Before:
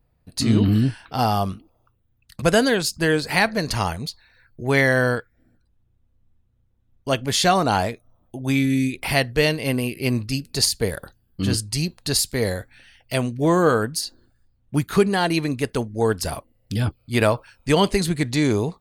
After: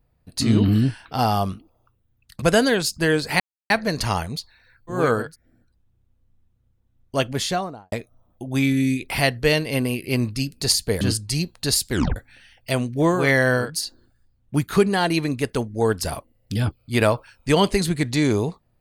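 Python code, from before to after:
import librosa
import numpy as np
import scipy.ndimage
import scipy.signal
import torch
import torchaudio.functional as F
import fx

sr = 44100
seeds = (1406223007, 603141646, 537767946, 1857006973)

y = fx.studio_fade_out(x, sr, start_s=7.15, length_s=0.7)
y = fx.edit(y, sr, fx.insert_silence(at_s=3.4, length_s=0.3),
    fx.swap(start_s=4.69, length_s=0.48, other_s=13.62, other_length_s=0.25, crossfade_s=0.24),
    fx.cut(start_s=10.94, length_s=0.5),
    fx.tape_stop(start_s=12.34, length_s=0.25), tone=tone)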